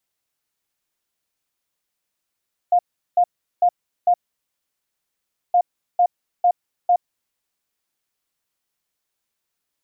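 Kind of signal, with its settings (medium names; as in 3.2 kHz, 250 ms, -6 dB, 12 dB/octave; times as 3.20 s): beep pattern sine 709 Hz, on 0.07 s, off 0.38 s, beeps 4, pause 1.40 s, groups 2, -11.5 dBFS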